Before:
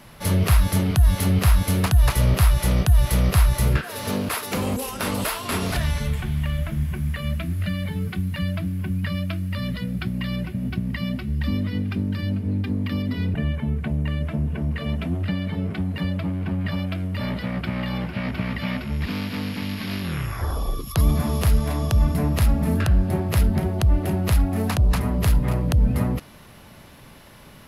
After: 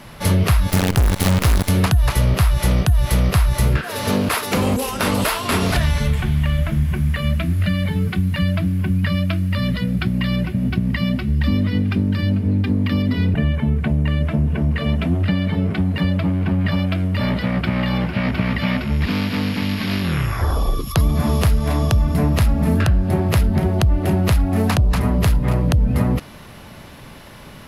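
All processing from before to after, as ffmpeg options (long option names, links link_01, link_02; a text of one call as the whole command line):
ffmpeg -i in.wav -filter_complex "[0:a]asettb=1/sr,asplit=3[link_01][link_02][link_03];[link_01]atrim=end=0.704[link_04];[link_02]atrim=start=0.7:end=1.69,asetpts=PTS-STARTPTS,afade=type=in:duration=0.004:curve=qsin,afade=type=out:start_time=0.986:duration=0.004:curve=qsin,aeval=exprs='sgn(val(0))*max(abs(val(0))-0.00473,0)':channel_layout=same,acrusher=bits=4:dc=4:mix=0:aa=0.000001[link_05];[link_03]atrim=start=1.686[link_06];[link_04][link_05]acrossfade=duration=0.004:curve1=hsin:curve2=qsin[link_07];[link_07][link_06]acrossfade=duration=0.004:curve1=qsin:curve2=hsin,highshelf=frequency=10000:gain=-6.5,acompressor=threshold=-19dB:ratio=6,volume=7dB" out.wav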